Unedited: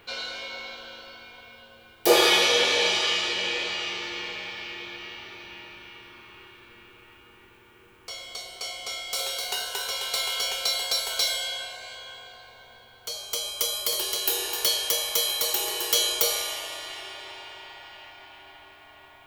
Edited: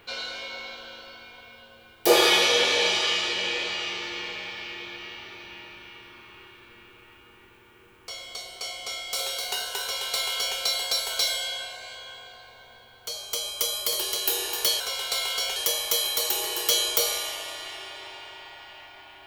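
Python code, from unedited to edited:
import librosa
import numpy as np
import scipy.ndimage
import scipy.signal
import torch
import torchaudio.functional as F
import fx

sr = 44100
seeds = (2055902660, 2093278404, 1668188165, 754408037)

y = fx.edit(x, sr, fx.duplicate(start_s=9.82, length_s=0.76, to_s=14.8), tone=tone)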